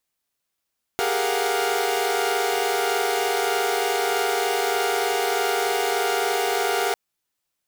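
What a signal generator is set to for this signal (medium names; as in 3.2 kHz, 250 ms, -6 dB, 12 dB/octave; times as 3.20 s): chord G4/G#4/A#4/F5/F#5 saw, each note -25 dBFS 5.95 s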